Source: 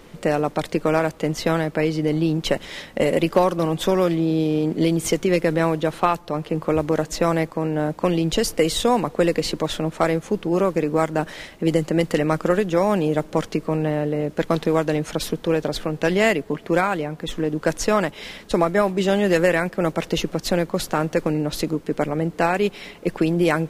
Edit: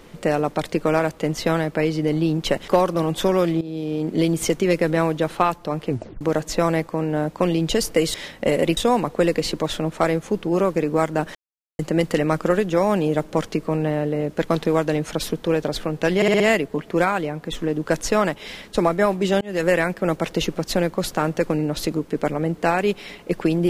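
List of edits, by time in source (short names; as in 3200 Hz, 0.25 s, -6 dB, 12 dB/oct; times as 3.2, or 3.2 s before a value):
2.68–3.31 move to 8.77
4.24–4.85 fade in, from -14.5 dB
6.52 tape stop 0.32 s
11.35–11.79 mute
16.16 stutter 0.06 s, 5 plays
19.17–19.48 fade in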